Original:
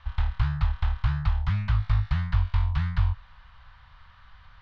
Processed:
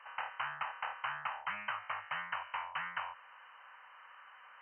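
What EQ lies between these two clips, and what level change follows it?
high-pass 390 Hz 24 dB/octave; brick-wall FIR low-pass 3.1 kHz; band-stop 690 Hz, Q 17; +1.5 dB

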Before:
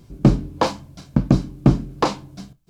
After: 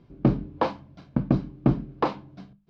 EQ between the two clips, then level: distance through air 310 m; bass shelf 99 Hz -8.5 dB; hum notches 50/100/150/200 Hz; -3.5 dB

